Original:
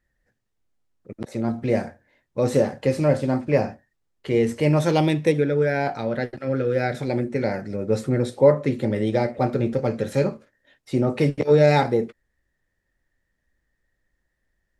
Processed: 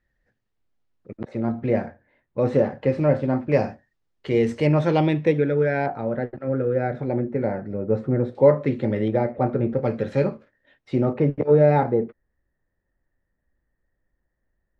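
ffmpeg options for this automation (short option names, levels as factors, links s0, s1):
-af "asetnsamples=n=441:p=0,asendcmd='1.17 lowpass f 2300;3.52 lowpass f 5400;4.67 lowpass f 2800;5.86 lowpass f 1300;8.35 lowpass f 3000;9.08 lowpass f 1600;9.83 lowpass f 3100;11.13 lowpass f 1300',lowpass=4400"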